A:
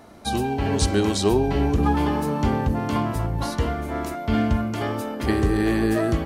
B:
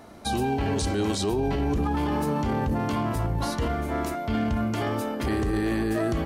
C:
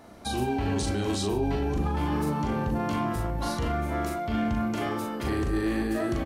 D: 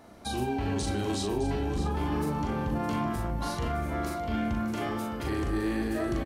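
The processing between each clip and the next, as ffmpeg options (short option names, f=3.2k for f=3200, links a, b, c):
-af "alimiter=limit=-18.5dB:level=0:latency=1:release=10"
-filter_complex "[0:a]asplit=2[a][b];[b]adelay=40,volume=-3.5dB[c];[a][c]amix=inputs=2:normalize=0,volume=-3.5dB"
-af "aecho=1:1:612:0.282,volume=-2.5dB"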